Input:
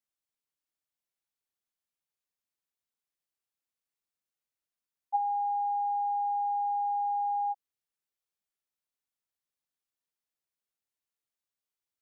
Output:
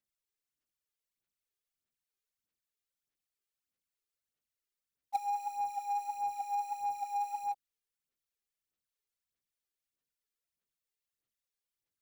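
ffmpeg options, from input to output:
-filter_complex "[0:a]asplit=2[a][b];[b]acrusher=bits=2:mode=log:mix=0:aa=0.000001,volume=-12dB[c];[a][c]amix=inputs=2:normalize=0,equalizer=f=880:w=1.7:g=-7.5,aphaser=in_gain=1:out_gain=1:delay=2.5:decay=0.64:speed=1.6:type=sinusoidal,volume=-5.5dB"

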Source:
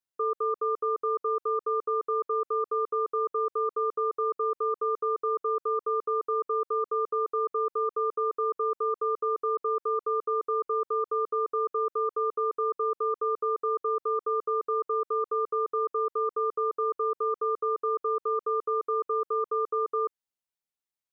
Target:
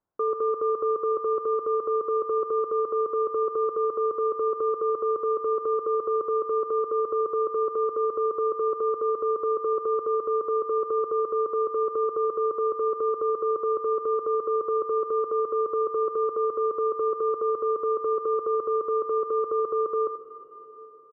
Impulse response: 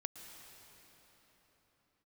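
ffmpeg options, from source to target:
-filter_complex "[0:a]lowpass=f=1.2k:w=0.5412,lowpass=f=1.2k:w=1.3066,acontrast=41,alimiter=level_in=4dB:limit=-24dB:level=0:latency=1:release=11,volume=-4dB,aecho=1:1:82:0.266,asplit=2[a][b];[1:a]atrim=start_sample=2205[c];[b][c]afir=irnorm=-1:irlink=0,volume=1.5dB[d];[a][d]amix=inputs=2:normalize=0,volume=4dB"

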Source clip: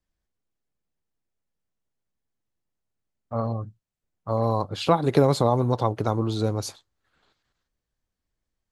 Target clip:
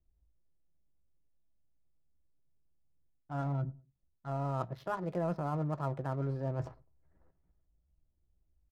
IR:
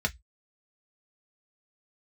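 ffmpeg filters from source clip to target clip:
-filter_complex "[0:a]asetrate=53981,aresample=44100,atempo=0.816958,lowpass=f=3.6k:p=1,adynamicsmooth=sensitivity=7.5:basefreq=680,lowshelf=f=87:g=11.5,areverse,acompressor=threshold=-35dB:ratio=6,areverse,asplit=2[a][b];[b]adelay=102,lowpass=f=810:p=1,volume=-22.5dB,asplit=2[c][d];[d]adelay=102,lowpass=f=810:p=1,volume=0.36[e];[a][c][e]amix=inputs=3:normalize=0,asplit=2[f][g];[1:a]atrim=start_sample=2205[h];[g][h]afir=irnorm=-1:irlink=0,volume=-14.5dB[i];[f][i]amix=inputs=2:normalize=0"

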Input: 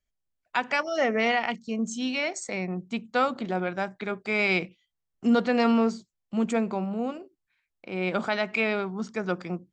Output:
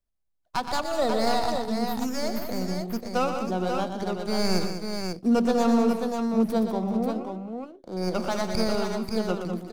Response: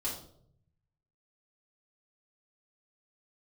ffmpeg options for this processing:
-filter_complex "[0:a]asettb=1/sr,asplit=3[a][b][c];[a]atrim=end=6.824[d];[b]atrim=start=6.82:end=7.97,asetpts=PTS-STARTPTS,afade=t=in:d=0.004:c=qsin,afade=t=out:st=1.146:d=0.004:c=qsin,highshelf=f=2k:t=q:w=3:g=-6[e];[c]atrim=start=7.966[f];[d][e]acrossfade=d=0.004:c1=hsin:c2=qsin[g];[g][f]acrossfade=d=0.004:c1=qsin:c2=hsin,acrossover=split=440|1400[h][i][j];[j]aeval=exprs='abs(val(0))':c=same[k];[h][i][k]amix=inputs=3:normalize=0,aecho=1:1:90|120|197|384|537:0.126|0.398|0.335|0.112|0.531"

